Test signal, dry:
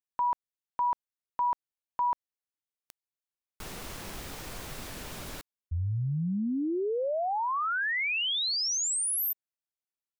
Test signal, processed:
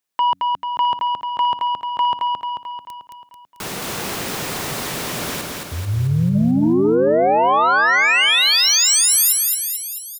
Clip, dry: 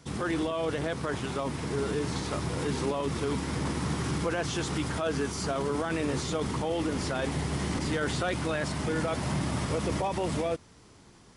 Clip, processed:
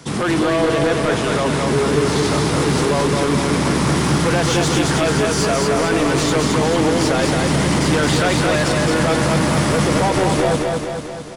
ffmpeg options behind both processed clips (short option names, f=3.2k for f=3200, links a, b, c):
-filter_complex "[0:a]bandreject=f=92.68:t=h:w=4,bandreject=f=185.36:t=h:w=4,bandreject=f=278.04:t=h:w=4,acrossover=split=100[a][b];[a]acompressor=threshold=-53dB:ratio=6[c];[b]aeval=exprs='0.141*sin(PI/2*2.51*val(0)/0.141)':c=same[d];[c][d]amix=inputs=2:normalize=0,aecho=1:1:220|440|660|880|1100|1320|1540|1760:0.708|0.404|0.23|0.131|0.0747|0.0426|0.0243|0.0138,volume=2.5dB"